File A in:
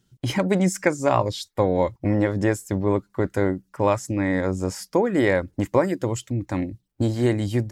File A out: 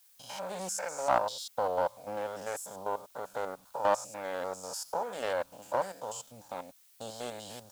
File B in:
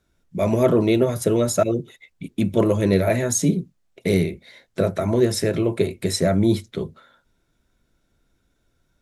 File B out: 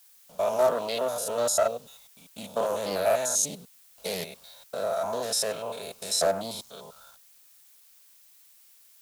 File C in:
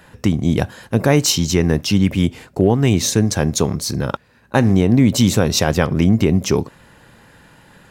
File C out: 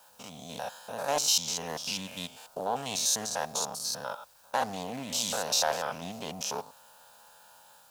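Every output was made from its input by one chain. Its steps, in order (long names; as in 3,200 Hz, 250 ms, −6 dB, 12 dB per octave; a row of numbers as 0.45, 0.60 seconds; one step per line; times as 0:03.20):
spectrum averaged block by block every 100 ms
noise gate with hold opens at −45 dBFS
high-pass filter 630 Hz 12 dB per octave
notch filter 1,100 Hz, Q 9.1
dynamic equaliser 2,100 Hz, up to +7 dB, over −47 dBFS, Q 3.1
automatic gain control gain up to 3.5 dB
bit reduction 9 bits
phaser with its sweep stopped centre 840 Hz, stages 4
background noise blue −59 dBFS
highs frequency-modulated by the lows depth 0.21 ms
normalise the peak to −12 dBFS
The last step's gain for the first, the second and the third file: −3.0, +2.0, −4.0 decibels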